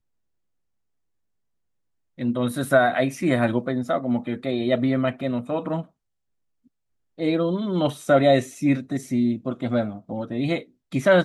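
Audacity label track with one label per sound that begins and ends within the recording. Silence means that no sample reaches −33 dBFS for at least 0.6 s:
2.190000	5.820000	sound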